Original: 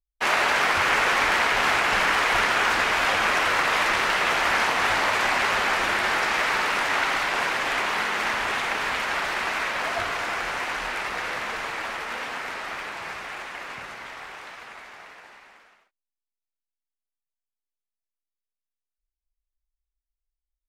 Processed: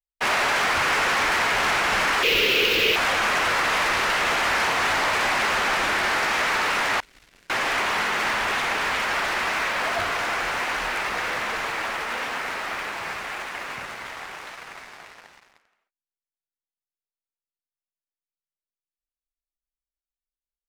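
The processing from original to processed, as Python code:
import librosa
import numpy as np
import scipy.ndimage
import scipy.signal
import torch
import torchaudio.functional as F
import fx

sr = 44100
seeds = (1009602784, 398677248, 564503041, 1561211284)

y = fx.tone_stack(x, sr, knobs='10-0-1', at=(7.0, 7.5))
y = fx.leveller(y, sr, passes=3)
y = fx.curve_eq(y, sr, hz=(250.0, 460.0, 710.0, 1800.0, 2700.0, 9300.0, 14000.0), db=(0, 13, -13, -7, 11, -7, 13), at=(2.23, 2.96))
y = y * 10.0 ** (-8.0 / 20.0)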